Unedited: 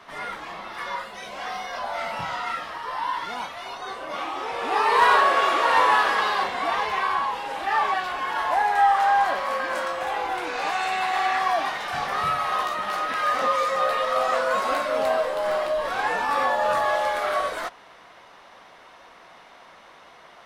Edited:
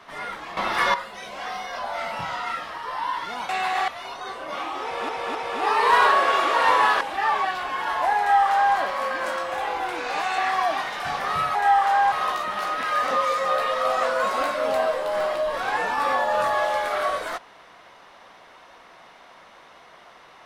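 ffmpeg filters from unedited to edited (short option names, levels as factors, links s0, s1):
-filter_complex "[0:a]asplit=11[s0][s1][s2][s3][s4][s5][s6][s7][s8][s9][s10];[s0]atrim=end=0.572[s11];[s1]atrim=start=0.568:end=0.942,asetpts=PTS-STARTPTS,volume=3.76[s12];[s2]atrim=start=0.938:end=3.492[s13];[s3]atrim=start=10.868:end=11.262[s14];[s4]atrim=start=3.488:end=4.702[s15];[s5]atrim=start=4.438:end=4.702[s16];[s6]atrim=start=4.438:end=6.102[s17];[s7]atrim=start=7.498:end=10.872[s18];[s8]atrim=start=11.258:end=12.432[s19];[s9]atrim=start=8.678:end=9.252[s20];[s10]atrim=start=12.428[s21];[s11][s12]acrossfade=d=0.004:c1=hsin:c2=hsin[s22];[s22][s13]acrossfade=d=0.004:c1=hsin:c2=hsin[s23];[s23][s14]acrossfade=d=0.004:c1=hsin:c2=hsin[s24];[s24][s15]acrossfade=d=0.004:c1=hsin:c2=hsin[s25];[s25][s16]acrossfade=d=0.004:c1=hsin:c2=hsin[s26];[s26][s17]acrossfade=d=0.004:c1=hsin:c2=hsin[s27];[s27][s18]acrossfade=d=0.004:c1=hsin:c2=hsin[s28];[s28][s19]acrossfade=d=0.004:c1=hsin:c2=hsin[s29];[s29][s20]acrossfade=d=0.004:c1=hsin:c2=hsin[s30];[s30][s21]acrossfade=d=0.004:c1=hsin:c2=hsin"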